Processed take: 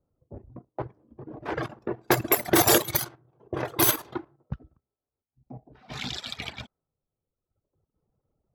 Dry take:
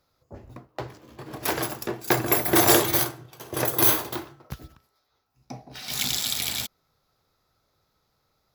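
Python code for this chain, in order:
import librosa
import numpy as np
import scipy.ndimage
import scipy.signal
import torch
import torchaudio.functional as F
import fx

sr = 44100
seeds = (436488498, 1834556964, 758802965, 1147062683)

y = fx.dereverb_blind(x, sr, rt60_s=1.5)
y = fx.level_steps(y, sr, step_db=11)
y = fx.env_lowpass(y, sr, base_hz=440.0, full_db=-23.5)
y = y * librosa.db_to_amplitude(5.0)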